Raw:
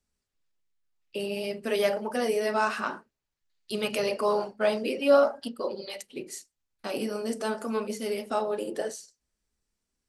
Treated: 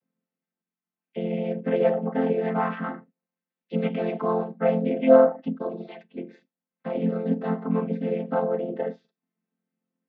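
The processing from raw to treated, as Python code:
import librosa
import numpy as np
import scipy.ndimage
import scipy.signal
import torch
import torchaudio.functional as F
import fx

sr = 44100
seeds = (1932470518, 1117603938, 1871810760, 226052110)

y = fx.chord_vocoder(x, sr, chord='major triad', root=53)
y = scipy.signal.sosfilt(scipy.signal.butter(4, 2900.0, 'lowpass', fs=sr, output='sos'), y)
y = y * librosa.db_to_amplitude(5.0)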